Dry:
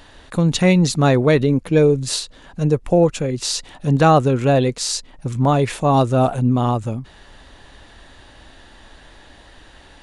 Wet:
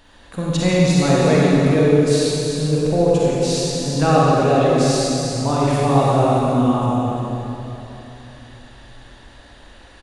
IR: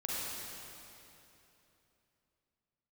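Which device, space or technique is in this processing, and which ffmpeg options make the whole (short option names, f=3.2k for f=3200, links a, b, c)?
cave: -filter_complex "[0:a]aecho=1:1:345:0.316[a];[1:a]atrim=start_sample=2205[b];[a][b]afir=irnorm=-1:irlink=0,volume=-4dB"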